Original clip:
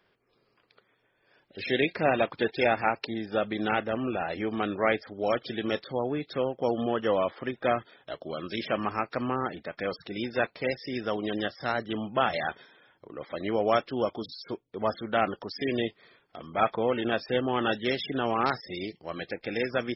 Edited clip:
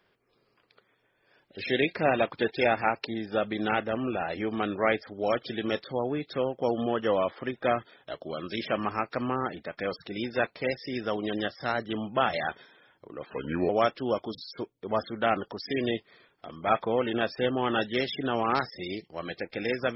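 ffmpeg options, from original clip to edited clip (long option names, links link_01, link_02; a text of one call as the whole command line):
ffmpeg -i in.wav -filter_complex "[0:a]asplit=3[link_01][link_02][link_03];[link_01]atrim=end=13.264[link_04];[link_02]atrim=start=13.26:end=13.6,asetpts=PTS-STARTPTS,asetrate=34839,aresample=44100[link_05];[link_03]atrim=start=13.596[link_06];[link_04][link_05]acrossfade=duration=0.004:curve1=hsin:curve2=hsin[link_07];[link_07][link_06]acrossfade=duration=0.004:curve1=hsin:curve2=hsin" out.wav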